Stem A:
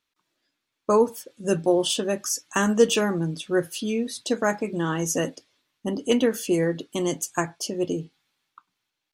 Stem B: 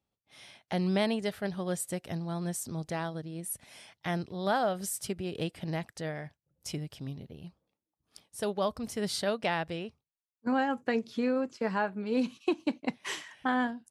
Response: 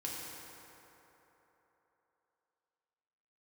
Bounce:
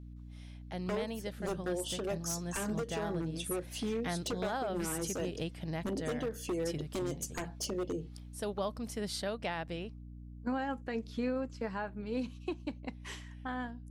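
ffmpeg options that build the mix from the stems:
-filter_complex "[0:a]adynamicequalizer=threshold=0.0224:dfrequency=510:dqfactor=0.81:tfrequency=510:tqfactor=0.81:attack=5:release=100:ratio=0.375:range=3.5:mode=boostabove:tftype=bell,acompressor=threshold=0.0501:ratio=12,aeval=exprs='0.0631*(abs(mod(val(0)/0.0631+3,4)-2)-1)':c=same,volume=0.562[s0];[1:a]dynaudnorm=f=200:g=21:m=2,aeval=exprs='val(0)+0.0141*(sin(2*PI*60*n/s)+sin(2*PI*2*60*n/s)/2+sin(2*PI*3*60*n/s)/3+sin(2*PI*4*60*n/s)/4+sin(2*PI*5*60*n/s)/5)':c=same,volume=0.335[s1];[s0][s1]amix=inputs=2:normalize=0,alimiter=level_in=1.19:limit=0.0631:level=0:latency=1:release=177,volume=0.841"

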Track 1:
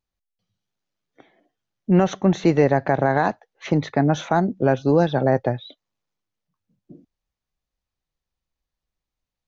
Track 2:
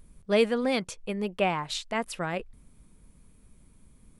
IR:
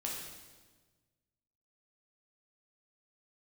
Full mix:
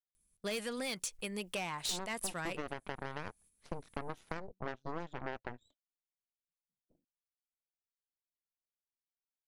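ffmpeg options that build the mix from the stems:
-filter_complex "[0:a]aeval=exprs='0.596*(cos(1*acos(clip(val(0)/0.596,-1,1)))-cos(1*PI/2))+0.211*(cos(3*acos(clip(val(0)/0.596,-1,1)))-cos(3*PI/2))+0.0422*(cos(4*acos(clip(val(0)/0.596,-1,1)))-cos(4*PI/2))+0.0376*(cos(8*acos(clip(val(0)/0.596,-1,1)))-cos(8*PI/2))':c=same,volume=0.335,asplit=2[s0][s1];[1:a]agate=range=0.112:threshold=0.00562:ratio=16:detection=peak,crystalizer=i=8.5:c=0,asoftclip=type=tanh:threshold=0.119,adelay=150,volume=0.794[s2];[s1]apad=whole_len=191772[s3];[s2][s3]sidechaingate=range=0.447:threshold=0.00126:ratio=16:detection=peak[s4];[s0][s4]amix=inputs=2:normalize=0,acompressor=threshold=0.0178:ratio=10"

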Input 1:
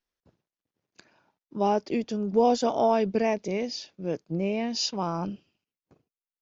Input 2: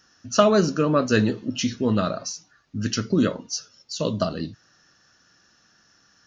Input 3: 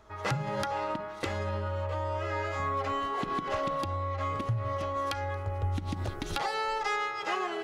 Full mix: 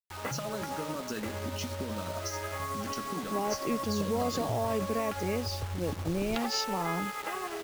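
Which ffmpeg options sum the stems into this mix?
-filter_complex "[0:a]alimiter=limit=0.106:level=0:latency=1,adelay=1750,volume=0.708[s0];[1:a]equalizer=f=110:w=4.7:g=-12,acompressor=threshold=0.0447:ratio=6,volume=0.944[s1];[2:a]afwtdn=0.0112,volume=1.12[s2];[s1][s2]amix=inputs=2:normalize=0,tremolo=f=11:d=0.4,acompressor=threshold=0.0251:ratio=8,volume=1[s3];[s0][s3]amix=inputs=2:normalize=0,acrusher=bits=6:mix=0:aa=0.000001"

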